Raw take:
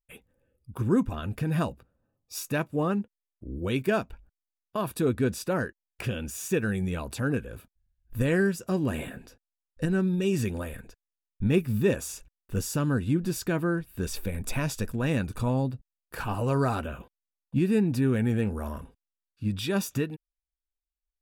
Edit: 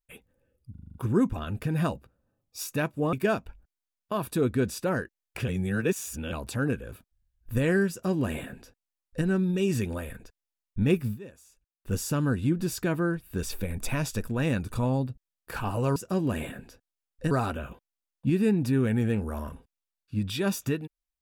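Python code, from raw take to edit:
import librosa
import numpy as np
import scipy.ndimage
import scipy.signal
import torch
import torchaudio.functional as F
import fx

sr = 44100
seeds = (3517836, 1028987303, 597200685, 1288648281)

y = fx.edit(x, sr, fx.stutter(start_s=0.71, slice_s=0.04, count=7),
    fx.cut(start_s=2.89, length_s=0.88),
    fx.reverse_span(start_s=6.12, length_s=0.84),
    fx.duplicate(start_s=8.54, length_s=1.35, to_s=16.6),
    fx.fade_down_up(start_s=11.69, length_s=0.86, db=-20.0, fade_s=0.13), tone=tone)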